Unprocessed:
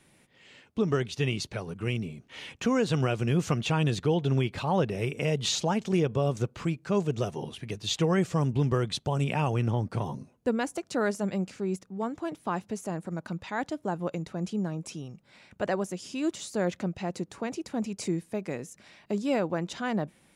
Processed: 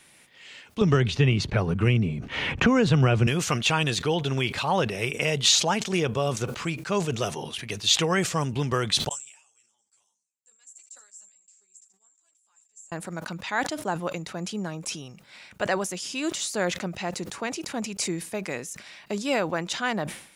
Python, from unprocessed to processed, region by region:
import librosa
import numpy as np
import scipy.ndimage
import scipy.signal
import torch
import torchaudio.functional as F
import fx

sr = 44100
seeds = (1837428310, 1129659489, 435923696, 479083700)

y = fx.chain(x, sr, fx.riaa(side='playback'),
    fx.band_squash(depth_pct=70), at=(0.81, 3.27))
y = fx.chain(y, sr, fx.bandpass_q(hz=7500.0, q=19.0),
    fx.echo_single(ms=79, db=-21.0),
    fx.ensemble(), at=(9.09, 12.92))
y = fx.tilt_shelf(y, sr, db=-6.5, hz=740.0)
y = fx.sustainer(y, sr, db_per_s=100.0)
y = y * 10.0 ** (3.5 / 20.0)